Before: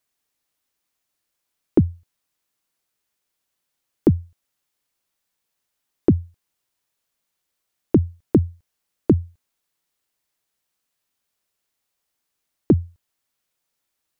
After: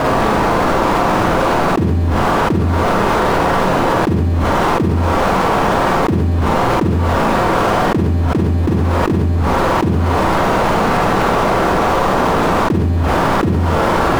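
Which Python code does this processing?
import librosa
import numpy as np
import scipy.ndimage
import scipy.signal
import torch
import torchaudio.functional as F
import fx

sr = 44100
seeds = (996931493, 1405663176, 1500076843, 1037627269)

p1 = scipy.signal.sosfilt(scipy.signal.butter(4, 1200.0, 'lowpass', fs=sr, output='sos'), x)
p2 = fx.power_curve(p1, sr, exponent=0.5)
p3 = p2 + fx.echo_single(p2, sr, ms=728, db=-14.0, dry=0)
p4 = fx.rev_schroeder(p3, sr, rt60_s=0.41, comb_ms=33, drr_db=-2.0)
p5 = fx.env_flatten(p4, sr, amount_pct=100)
y = p5 * 10.0 ** (-7.5 / 20.0)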